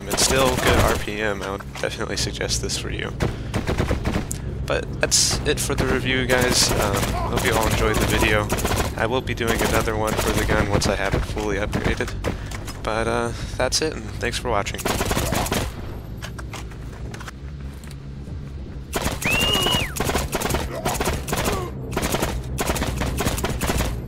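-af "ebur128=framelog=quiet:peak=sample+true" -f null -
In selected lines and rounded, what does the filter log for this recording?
Integrated loudness:
  I:         -22.0 LUFS
  Threshold: -32.6 LUFS
Loudness range:
  LRA:         6.6 LU
  Threshold: -42.7 LUFS
  LRA low:   -26.3 LUFS
  LRA high:  -19.7 LUFS
Sample peak:
  Peak:       -2.3 dBFS
True peak:
  Peak:       -2.3 dBFS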